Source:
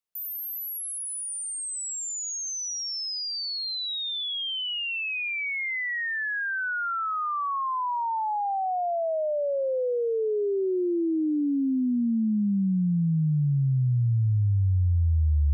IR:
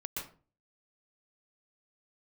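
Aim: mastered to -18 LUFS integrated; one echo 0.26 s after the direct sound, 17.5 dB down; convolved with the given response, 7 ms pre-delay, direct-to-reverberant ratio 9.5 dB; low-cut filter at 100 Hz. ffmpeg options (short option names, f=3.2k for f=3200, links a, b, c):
-filter_complex "[0:a]highpass=100,aecho=1:1:260:0.133,asplit=2[a][b];[1:a]atrim=start_sample=2205,adelay=7[c];[b][c]afir=irnorm=-1:irlink=0,volume=-10.5dB[d];[a][d]amix=inputs=2:normalize=0,volume=8.5dB"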